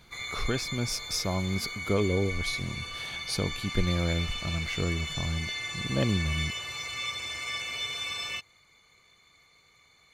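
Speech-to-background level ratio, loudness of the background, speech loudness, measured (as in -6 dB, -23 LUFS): 2.5 dB, -34.0 LUFS, -31.5 LUFS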